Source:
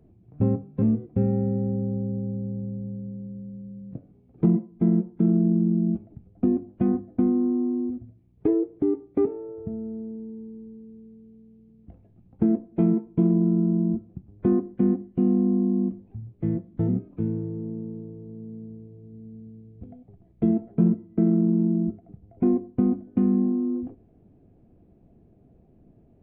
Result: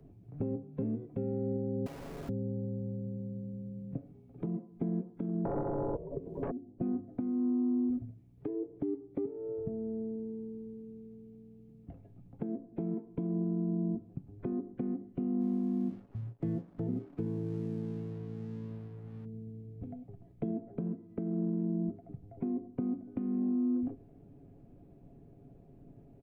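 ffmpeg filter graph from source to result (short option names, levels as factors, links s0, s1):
-filter_complex "[0:a]asettb=1/sr,asplit=3[s0][s1][s2];[s0]atrim=end=1.864[s3];[s1]atrim=start=1.86:end=2.29,asetpts=PTS-STARTPTS,afade=t=in:d=0.004:c=qsin,afade=t=out:st=0.426:d=0.004:c=qsin,highpass=110,aecho=1:1:3.3:0.64,atrim=end_sample=18963,aeval=exprs='(mod(50.1*val(0)+1,2)-1)/50.1':c=same[s4];[s2]atrim=start=2.286[s5];[s3][s4]acrossfade=d=0.004:c1=hsin:c2=qsin[s6];[s6][s5]acrossfade=d=0.004:c1=qsin:c2=hsin,asettb=1/sr,asplit=3[s7][s8][s9];[s7]atrim=end=5.454[s10];[s8]atrim=start=5.45:end=6.51,asetpts=PTS-STARTPTS,afade=t=in:d=0.004:c=qsin,afade=t=out:st=1.056:d=0.004:c=qsin,acontrast=35,aeval=exprs='0.447*sin(PI/2*4.47*val(0)/0.447)':c=same,aeval=exprs='val(0)*sin(2*PI*270*n/s)':c=same[s11];[s9]atrim=start=6.506[s12];[s10][s11]acrossfade=d=0.004:c1=hsin:c2=qsin[s13];[s13][s12]acrossfade=d=0.004:c1=qsin:c2=hsin,asettb=1/sr,asplit=3[s14][s15][s16];[s14]atrim=end=15.404[s17];[s15]atrim=start=15.4:end=19.25,asetpts=PTS-STARTPTS,afade=t=in:d=0.004:c=qsin,afade=t=out:st=3.846:d=0.004:c=qsin,aeval=exprs='sgn(val(0))*max(abs(val(0))-0.00133,0)':c=same,asplit=2[s18][s19];[s19]adelay=35,volume=0.224[s20];[s18][s20]amix=inputs=2:normalize=0,atrim=end_sample=169785[s21];[s16]atrim=start=19.246[s22];[s17][s21]acrossfade=d=0.004:c1=hsin:c2=qsin[s23];[s23][s22]acrossfade=d=0.004:c1=qsin:c2=hsin,aecho=1:1:7.2:0.46,acrossover=split=220|690[s24][s25][s26];[s24]acompressor=threshold=0.0126:ratio=4[s27];[s25]acompressor=threshold=0.0316:ratio=4[s28];[s26]acompressor=threshold=0.00141:ratio=4[s29];[s27][s28][s29]amix=inputs=3:normalize=0,alimiter=level_in=1.06:limit=0.0631:level=0:latency=1:release=348,volume=0.944"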